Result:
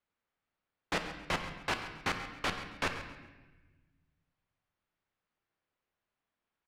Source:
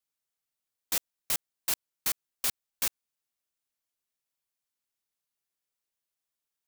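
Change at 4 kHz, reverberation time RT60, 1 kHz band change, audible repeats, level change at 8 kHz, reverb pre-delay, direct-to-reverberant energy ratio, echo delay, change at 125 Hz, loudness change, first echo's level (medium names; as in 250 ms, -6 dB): -2.5 dB, 1.2 s, +9.5 dB, 2, -15.5 dB, 11 ms, 5.0 dB, 136 ms, +11.5 dB, -5.0 dB, -13.5 dB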